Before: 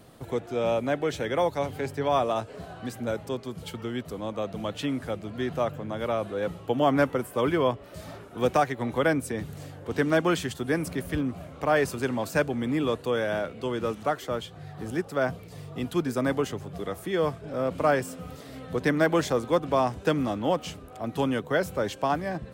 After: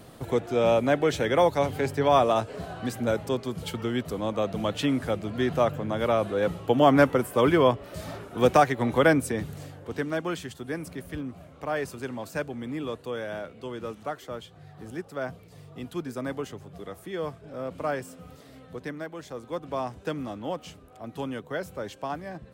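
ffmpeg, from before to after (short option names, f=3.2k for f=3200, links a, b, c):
-af "volume=14dB,afade=t=out:st=9.11:d=0.98:silence=0.298538,afade=t=out:st=18.46:d=0.69:silence=0.298538,afade=t=in:st=19.15:d=0.62:silence=0.316228"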